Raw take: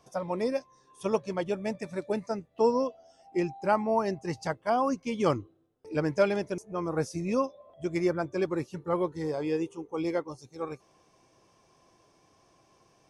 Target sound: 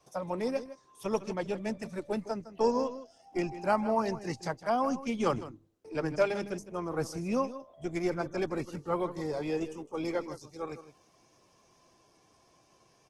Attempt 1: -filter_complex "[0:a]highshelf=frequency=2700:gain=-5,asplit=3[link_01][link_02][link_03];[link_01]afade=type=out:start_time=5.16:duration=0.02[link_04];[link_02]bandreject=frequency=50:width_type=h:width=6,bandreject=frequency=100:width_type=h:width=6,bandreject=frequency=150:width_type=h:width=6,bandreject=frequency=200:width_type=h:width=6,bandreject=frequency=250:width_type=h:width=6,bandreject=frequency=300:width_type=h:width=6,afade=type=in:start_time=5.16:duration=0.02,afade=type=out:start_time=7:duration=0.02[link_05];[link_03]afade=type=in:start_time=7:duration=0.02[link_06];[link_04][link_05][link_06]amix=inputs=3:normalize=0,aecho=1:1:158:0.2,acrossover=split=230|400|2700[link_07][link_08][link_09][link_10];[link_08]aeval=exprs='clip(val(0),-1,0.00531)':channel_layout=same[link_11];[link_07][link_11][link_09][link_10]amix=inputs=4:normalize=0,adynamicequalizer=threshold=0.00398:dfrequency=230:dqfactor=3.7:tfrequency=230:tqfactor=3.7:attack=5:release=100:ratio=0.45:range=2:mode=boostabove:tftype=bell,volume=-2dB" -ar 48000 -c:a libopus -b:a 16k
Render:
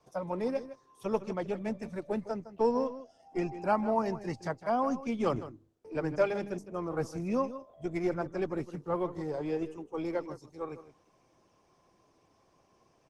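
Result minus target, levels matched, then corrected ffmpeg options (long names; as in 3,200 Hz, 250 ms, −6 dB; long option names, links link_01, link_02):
4,000 Hz band −6.0 dB
-filter_complex "[0:a]highshelf=frequency=2700:gain=3.5,asplit=3[link_01][link_02][link_03];[link_01]afade=type=out:start_time=5.16:duration=0.02[link_04];[link_02]bandreject=frequency=50:width_type=h:width=6,bandreject=frequency=100:width_type=h:width=6,bandreject=frequency=150:width_type=h:width=6,bandreject=frequency=200:width_type=h:width=6,bandreject=frequency=250:width_type=h:width=6,bandreject=frequency=300:width_type=h:width=6,afade=type=in:start_time=5.16:duration=0.02,afade=type=out:start_time=7:duration=0.02[link_05];[link_03]afade=type=in:start_time=7:duration=0.02[link_06];[link_04][link_05][link_06]amix=inputs=3:normalize=0,aecho=1:1:158:0.2,acrossover=split=230|400|2700[link_07][link_08][link_09][link_10];[link_08]aeval=exprs='clip(val(0),-1,0.00531)':channel_layout=same[link_11];[link_07][link_11][link_09][link_10]amix=inputs=4:normalize=0,adynamicequalizer=threshold=0.00398:dfrequency=230:dqfactor=3.7:tfrequency=230:tqfactor=3.7:attack=5:release=100:ratio=0.45:range=2:mode=boostabove:tftype=bell,volume=-2dB" -ar 48000 -c:a libopus -b:a 16k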